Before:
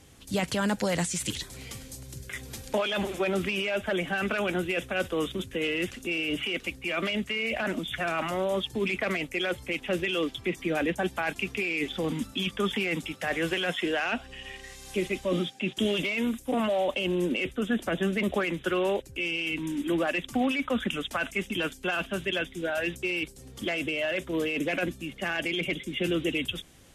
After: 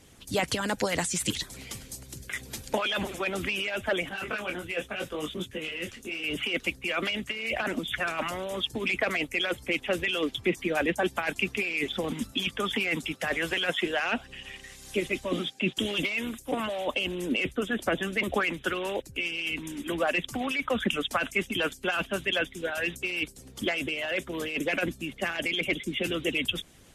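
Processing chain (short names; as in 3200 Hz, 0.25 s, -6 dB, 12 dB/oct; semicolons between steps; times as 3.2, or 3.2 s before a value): harmonic-percussive split harmonic -11 dB; 4.09–6.24 detuned doubles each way 30 cents; gain +4 dB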